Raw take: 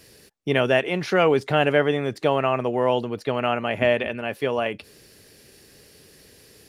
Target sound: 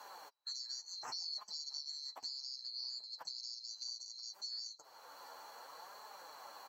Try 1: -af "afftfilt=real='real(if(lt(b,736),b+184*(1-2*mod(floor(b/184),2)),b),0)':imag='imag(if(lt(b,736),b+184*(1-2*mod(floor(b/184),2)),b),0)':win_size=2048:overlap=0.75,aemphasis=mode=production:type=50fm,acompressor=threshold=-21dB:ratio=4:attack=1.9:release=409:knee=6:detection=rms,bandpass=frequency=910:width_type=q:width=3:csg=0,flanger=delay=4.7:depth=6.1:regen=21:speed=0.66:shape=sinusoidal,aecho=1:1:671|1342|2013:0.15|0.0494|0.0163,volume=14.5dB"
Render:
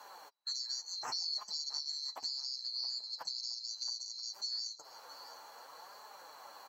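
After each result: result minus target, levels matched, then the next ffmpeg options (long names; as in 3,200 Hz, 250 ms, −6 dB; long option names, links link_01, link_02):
echo-to-direct +9.5 dB; downward compressor: peak gain reduction −5 dB
-af "afftfilt=real='real(if(lt(b,736),b+184*(1-2*mod(floor(b/184),2)),b),0)':imag='imag(if(lt(b,736),b+184*(1-2*mod(floor(b/184),2)),b),0)':win_size=2048:overlap=0.75,aemphasis=mode=production:type=50fm,acompressor=threshold=-21dB:ratio=4:attack=1.9:release=409:knee=6:detection=rms,bandpass=frequency=910:width_type=q:width=3:csg=0,flanger=delay=4.7:depth=6.1:regen=21:speed=0.66:shape=sinusoidal,aecho=1:1:671|1342:0.0501|0.0165,volume=14.5dB"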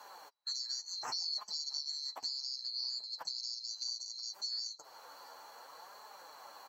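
downward compressor: peak gain reduction −5 dB
-af "afftfilt=real='real(if(lt(b,736),b+184*(1-2*mod(floor(b/184),2)),b),0)':imag='imag(if(lt(b,736),b+184*(1-2*mod(floor(b/184),2)),b),0)':win_size=2048:overlap=0.75,aemphasis=mode=production:type=50fm,acompressor=threshold=-28dB:ratio=4:attack=1.9:release=409:knee=6:detection=rms,bandpass=frequency=910:width_type=q:width=3:csg=0,flanger=delay=4.7:depth=6.1:regen=21:speed=0.66:shape=sinusoidal,aecho=1:1:671|1342:0.0501|0.0165,volume=14.5dB"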